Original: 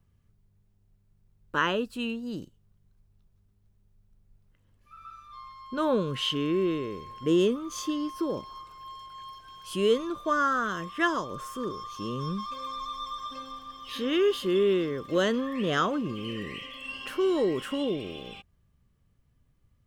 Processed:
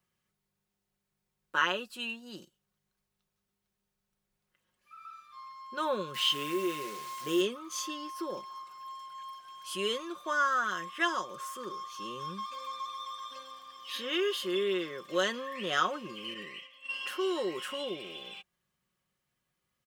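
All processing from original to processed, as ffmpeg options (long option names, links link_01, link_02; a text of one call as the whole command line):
ffmpeg -i in.wav -filter_complex "[0:a]asettb=1/sr,asplit=3[link_01][link_02][link_03];[link_01]atrim=end=6.144[link_04];[link_02]atrim=start=6.14:end=7.41,asetpts=PTS-STARTPTS,afade=type=in:duration=0.004:curve=qsin,afade=type=out:start_time=1.266:duration=0.004:curve=qsin,asplit=2[link_05][link_06];[link_06]adelay=14,volume=-6.5dB[link_07];[link_05][link_07]amix=inputs=2:normalize=0,atrim=end_sample=56007,acrusher=bits=8:dc=4:mix=0:aa=0.000001[link_08];[link_03]atrim=start=7.406[link_09];[link_04][link_08]acrossfade=duration=0.004:curve1=hsin:curve2=qsin[link_10];[link_10][link_09]acrossfade=duration=0.004:curve1=qsin:curve2=hsin,asettb=1/sr,asplit=3[link_11][link_12][link_13];[link_11]atrim=end=16.344[link_14];[link_12]atrim=start=16.34:end=16.9,asetpts=PTS-STARTPTS,afade=type=in:duration=0.004:curve=qsin,afade=type=out:start_time=0.556:duration=0.004:curve=qsin,agate=range=-33dB:threshold=-35dB:ratio=3:release=100:detection=peak,highshelf=frequency=6000:gain=-4.5[link_15];[link_13]atrim=start=16.896[link_16];[link_14][link_15]acrossfade=duration=0.004:curve1=hsin:curve2=qsin[link_17];[link_17][link_16]acrossfade=duration=0.004:curve1=qsin:curve2=hsin,highpass=frequency=1100:poles=1,aecho=1:1:5.5:0.54" out.wav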